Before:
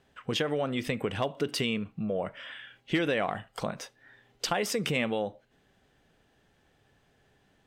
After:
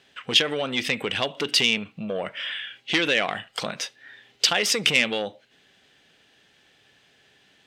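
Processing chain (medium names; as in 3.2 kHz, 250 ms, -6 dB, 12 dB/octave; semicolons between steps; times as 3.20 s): frequency weighting D; transformer saturation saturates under 2.7 kHz; trim +3.5 dB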